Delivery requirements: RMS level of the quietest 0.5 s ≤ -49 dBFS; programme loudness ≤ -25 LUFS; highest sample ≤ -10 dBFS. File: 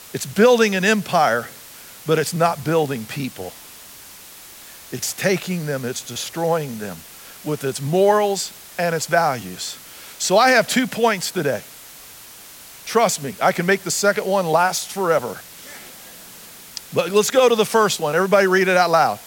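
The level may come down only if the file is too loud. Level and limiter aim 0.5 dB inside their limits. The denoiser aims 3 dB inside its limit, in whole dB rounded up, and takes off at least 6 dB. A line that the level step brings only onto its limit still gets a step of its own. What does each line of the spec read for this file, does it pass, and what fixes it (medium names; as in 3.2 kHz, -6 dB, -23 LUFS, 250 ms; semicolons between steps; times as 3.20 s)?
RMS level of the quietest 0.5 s -41 dBFS: fail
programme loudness -19.0 LUFS: fail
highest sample -4.0 dBFS: fail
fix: noise reduction 6 dB, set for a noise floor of -41 dBFS; trim -6.5 dB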